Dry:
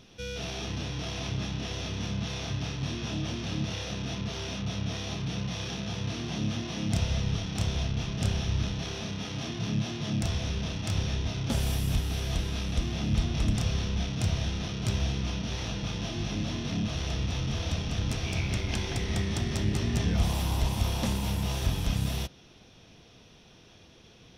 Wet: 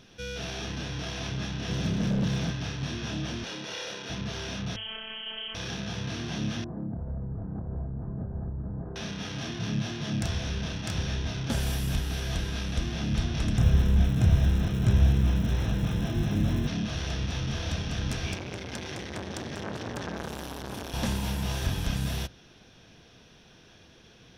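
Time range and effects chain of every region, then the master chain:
0:01.68–0:02.51: parametric band 170 Hz +13.5 dB 1.6 octaves + gain into a clipping stage and back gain 23 dB
0:03.44–0:04.10: high-pass filter 320 Hz + comb filter 2.1 ms, depth 38%
0:04.76–0:05.55: lower of the sound and its delayed copy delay 4.3 ms + voice inversion scrambler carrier 3,200 Hz + phases set to zero 220 Hz
0:06.64–0:08.96: Gaussian smoothing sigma 9.3 samples + downward compressor 5 to 1, threshold −29 dBFS
0:13.57–0:16.66: spectral tilt −2.5 dB per octave + surface crackle 430 per second −36 dBFS + Butterworth band-reject 4,600 Hz, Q 6.3
0:18.34–0:20.94: high-pass filter 97 Hz + saturating transformer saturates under 1,400 Hz
whole clip: parametric band 1,600 Hz +8 dB 0.25 octaves; mains-hum notches 50/100 Hz

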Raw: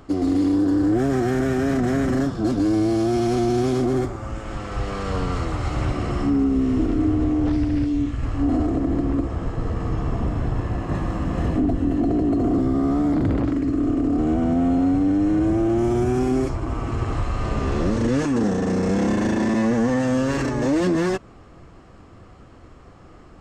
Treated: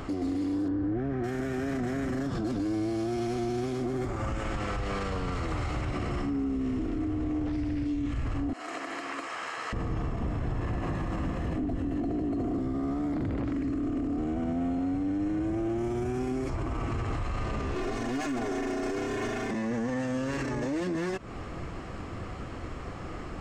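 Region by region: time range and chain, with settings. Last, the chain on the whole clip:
0:00.68–0:01.24: low-pass filter 2,400 Hz + low-shelf EQ 240 Hz +6.5 dB
0:08.53–0:09.73: high-pass filter 1,400 Hz + notch filter 3,500 Hz, Q 16
0:17.75–0:19.51: lower of the sound and its delayed copy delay 7.7 ms + parametric band 76 Hz −9.5 dB 1.4 octaves + comb filter 2.8 ms, depth 94%
whole clip: parametric band 2,200 Hz +4 dB 0.81 octaves; downward compressor, threshold −29 dBFS; brickwall limiter −31.5 dBFS; level +7.5 dB

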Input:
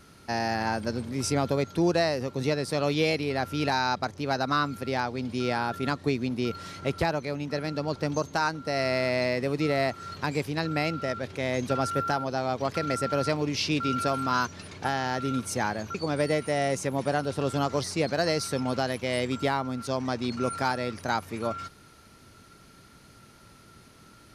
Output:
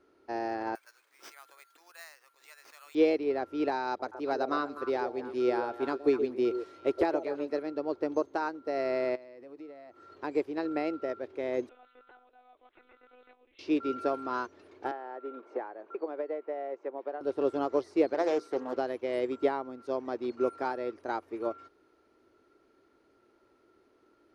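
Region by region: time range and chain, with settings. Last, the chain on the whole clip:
0:00.75–0:02.95: high-pass filter 1,300 Hz 24 dB per octave + bad sample-rate conversion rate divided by 4×, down none, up zero stuff
0:03.87–0:07.63: high-shelf EQ 5,000 Hz +7 dB + echo through a band-pass that steps 123 ms, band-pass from 480 Hz, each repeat 1.4 octaves, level −4 dB
0:09.15–0:10.10: notch filter 400 Hz, Q 6.9 + downward compressor 8 to 1, threshold −35 dBFS
0:11.69–0:13.59: first difference + one-pitch LPC vocoder at 8 kHz 250 Hz
0:14.91–0:17.21: high-pass filter 530 Hz + head-to-tape spacing loss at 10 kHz 41 dB + multiband upward and downward compressor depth 100%
0:18.14–0:18.76: high-pass filter 140 Hz 24 dB per octave + mains-hum notches 60/120/180/240/300/360/420/480 Hz + highs frequency-modulated by the lows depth 0.27 ms
whole clip: low-pass filter 1,000 Hz 6 dB per octave; low shelf with overshoot 240 Hz −12.5 dB, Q 3; expander for the loud parts 1.5 to 1, over −39 dBFS

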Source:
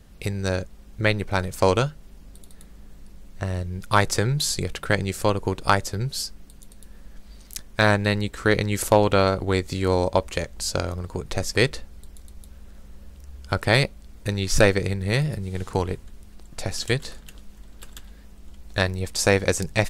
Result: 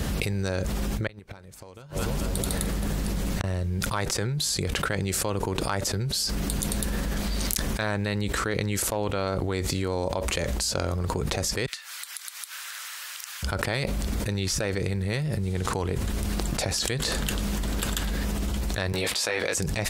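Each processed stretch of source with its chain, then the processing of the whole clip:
0:01.07–0:03.44: downward compressor 10 to 1, threshold −31 dBFS + echo with a time of its own for lows and highs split 710 Hz, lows 296 ms, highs 220 ms, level −16 dB + gate with flip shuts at −28 dBFS, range −35 dB
0:11.66–0:13.43: high-pass filter 1,300 Hz 24 dB per octave + downward compressor 12 to 1, threshold −58 dBFS
0:18.92–0:19.55: high-pass filter 790 Hz 6 dB per octave + high shelf with overshoot 4,800 Hz −6.5 dB, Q 1.5 + double-tracking delay 18 ms −3 dB
whole clip: high-pass filter 53 Hz 12 dB per octave; envelope flattener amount 100%; level −14.5 dB

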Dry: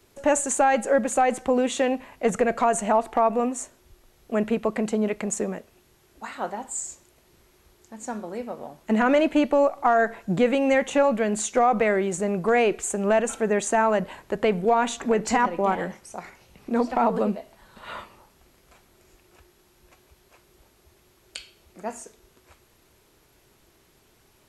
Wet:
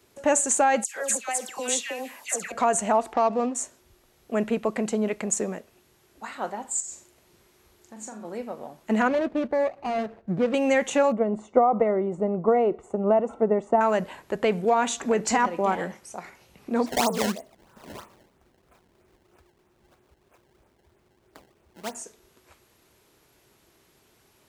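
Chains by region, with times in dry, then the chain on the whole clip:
0:00.84–0:02.52: spectral tilt +4.5 dB per octave + downward compressor 4 to 1, threshold −26 dBFS + all-pass dispersion lows, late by 116 ms, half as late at 1,800 Hz
0:03.13–0:03.55: running median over 15 samples + high-frequency loss of the air 74 metres
0:06.80–0:08.25: downward compressor 4 to 1, threshold −37 dBFS + flutter between parallel walls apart 7.2 metres, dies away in 0.31 s
0:09.08–0:10.54: running median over 41 samples + low-pass filter 1,600 Hz 6 dB per octave + parametric band 290 Hz −5.5 dB 0.27 octaves
0:11.12–0:13.81: transient designer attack +5 dB, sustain 0 dB + Savitzky-Golay smoothing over 65 samples
0:16.86–0:21.95: high-frequency loss of the air 470 metres + sample-and-hold swept by an LFO 21×, swing 160% 3.1 Hz
whole clip: high-pass filter 88 Hz 6 dB per octave; dynamic equaliser 6,600 Hz, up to +5 dB, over −46 dBFS, Q 0.99; level −1 dB

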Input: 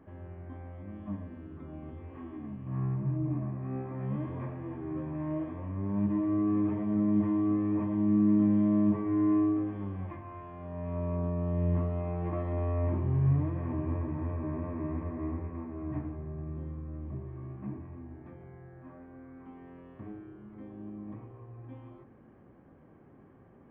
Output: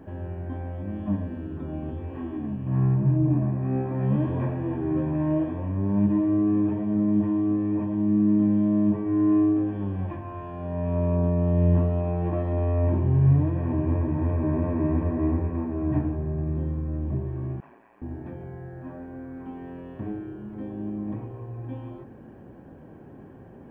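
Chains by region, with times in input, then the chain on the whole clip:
0:17.60–0:18.02: high-pass filter 1,000 Hz + ring modulation 57 Hz
whole clip: speech leveller within 4 dB 2 s; parametric band 1,200 Hz −12 dB 0.22 octaves; notch filter 2,100 Hz, Q 5.5; level +7 dB

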